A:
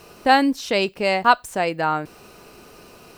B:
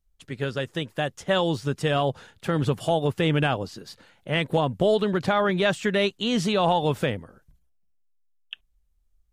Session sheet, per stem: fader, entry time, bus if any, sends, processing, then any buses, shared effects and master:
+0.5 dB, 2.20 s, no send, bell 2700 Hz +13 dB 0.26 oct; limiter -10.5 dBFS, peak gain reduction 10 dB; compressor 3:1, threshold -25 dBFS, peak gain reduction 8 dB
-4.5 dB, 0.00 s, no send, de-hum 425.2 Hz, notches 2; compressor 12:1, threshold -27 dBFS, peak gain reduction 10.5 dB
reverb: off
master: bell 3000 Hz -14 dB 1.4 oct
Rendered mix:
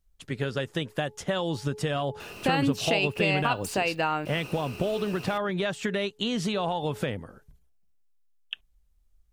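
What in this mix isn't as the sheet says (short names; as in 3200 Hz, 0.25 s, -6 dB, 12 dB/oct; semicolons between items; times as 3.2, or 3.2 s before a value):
stem B -4.5 dB -> +2.5 dB; master: missing bell 3000 Hz -14 dB 1.4 oct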